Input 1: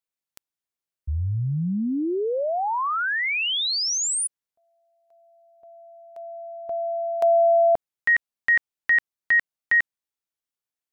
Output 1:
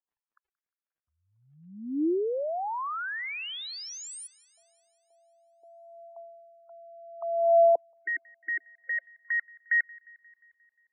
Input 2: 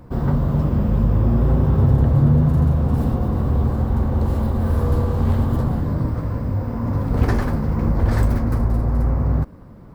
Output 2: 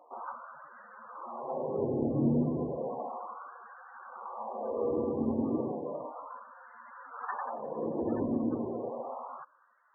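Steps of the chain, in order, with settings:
high-shelf EQ 2,100 Hz −10 dB
auto-filter high-pass sine 0.33 Hz 290–1,600 Hz
surface crackle 29 per second −54 dBFS
spectral peaks only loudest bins 32
on a send: delay with a high-pass on its return 177 ms, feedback 62%, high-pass 1,900 Hz, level −21.5 dB
on the sum: level −7.5 dB

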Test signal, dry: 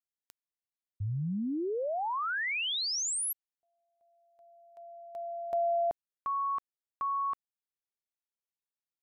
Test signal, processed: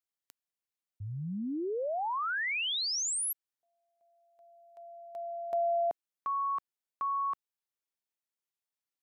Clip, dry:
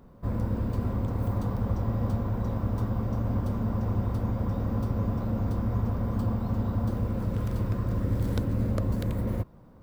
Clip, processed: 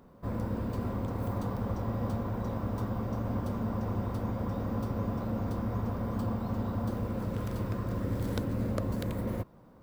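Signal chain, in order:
low-shelf EQ 130 Hz −10 dB

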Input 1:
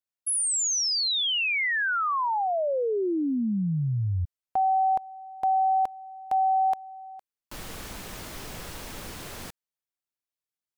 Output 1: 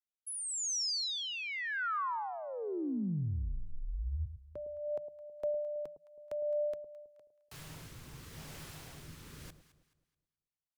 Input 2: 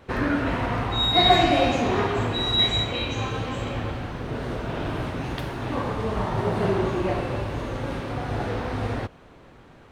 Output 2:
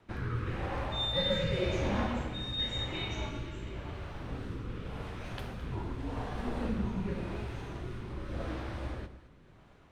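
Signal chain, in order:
rotating-speaker cabinet horn 0.9 Hz
frequency shifter −170 Hz
delay that swaps between a low-pass and a high-pass 107 ms, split 810 Hz, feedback 57%, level −10.5 dB
level −8 dB

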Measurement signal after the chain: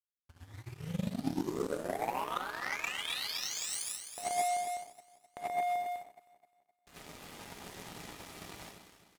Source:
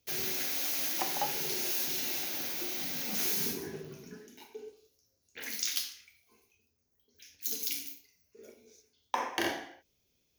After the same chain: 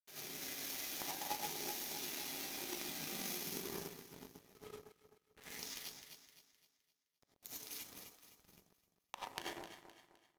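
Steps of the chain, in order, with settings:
hold until the input has moved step −37 dBFS
downsampling to 32,000 Hz
reverb reduction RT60 0.81 s
high-pass filter 56 Hz
downward compressor 6 to 1, threshold −38 dBFS
delay that swaps between a low-pass and a high-pass 129 ms, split 1,100 Hz, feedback 79%, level −2.5 dB
reverb whose tail is shaped and stops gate 120 ms rising, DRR −5.5 dB
power curve on the samples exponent 2

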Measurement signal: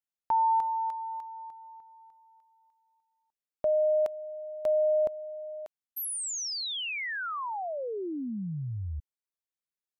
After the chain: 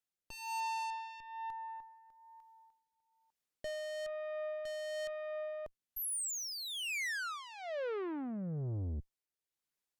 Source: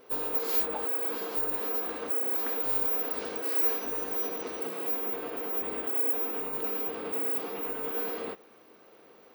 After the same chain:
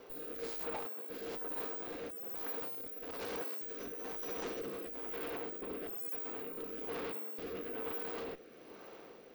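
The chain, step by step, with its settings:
tube saturation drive 42 dB, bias 0.45
rotating-speaker cabinet horn 1.1 Hz
level +6.5 dB

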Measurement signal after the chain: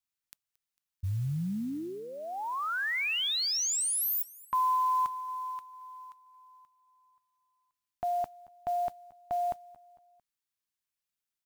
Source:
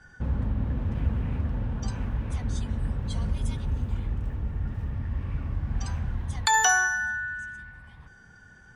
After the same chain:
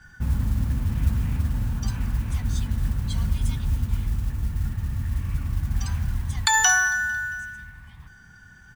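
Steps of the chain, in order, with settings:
parametric band 500 Hz −12 dB 1.4 octaves
repeating echo 225 ms, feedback 50%, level −22 dB
noise that follows the level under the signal 27 dB
level +4.5 dB

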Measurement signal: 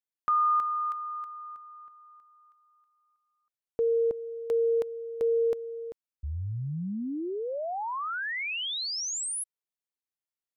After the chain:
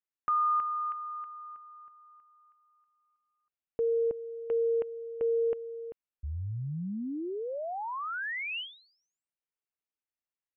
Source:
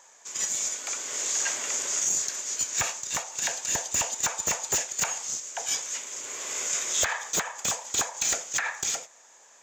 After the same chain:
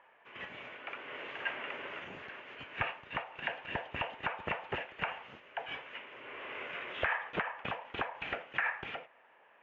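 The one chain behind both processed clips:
Chebyshev low-pass filter 2,900 Hz, order 5
level −2 dB

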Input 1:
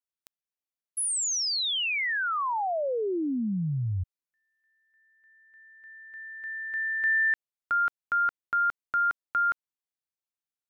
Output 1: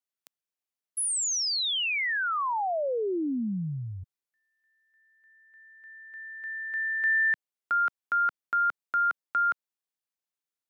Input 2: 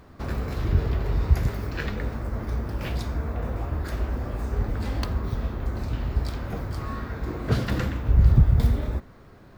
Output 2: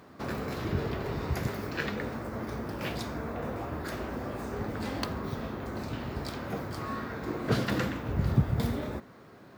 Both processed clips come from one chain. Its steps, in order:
high-pass filter 160 Hz 12 dB per octave

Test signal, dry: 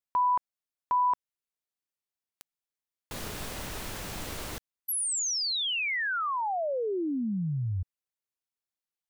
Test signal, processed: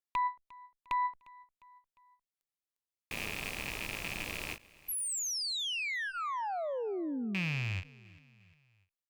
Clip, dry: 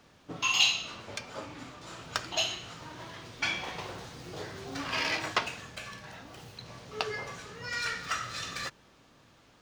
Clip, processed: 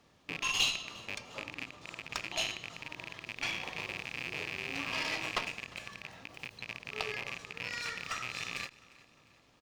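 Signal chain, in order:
loose part that buzzes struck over −47 dBFS, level −19 dBFS
notch filter 1,500 Hz, Q 9.3
harmonic generator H 4 −20 dB, 6 −38 dB, 8 −30 dB, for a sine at −10.5 dBFS
on a send: repeating echo 353 ms, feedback 48%, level −22 dB
on the sum: every ending faded ahead of time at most 300 dB per second
level −5.5 dB

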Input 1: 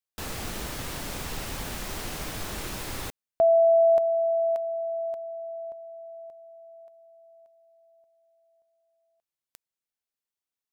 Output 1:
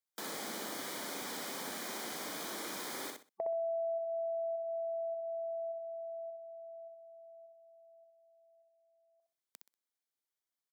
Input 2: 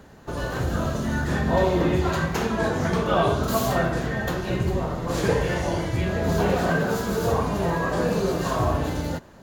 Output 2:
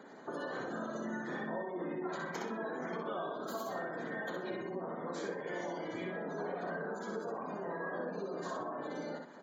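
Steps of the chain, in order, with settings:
high-pass filter 220 Hz 24 dB per octave
gate on every frequency bin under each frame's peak −25 dB strong
downward compressor 5 to 1, threshold −36 dBFS
Butterworth band-reject 2,700 Hz, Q 6.2
repeating echo 63 ms, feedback 23%, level −4.5 dB
level −3 dB

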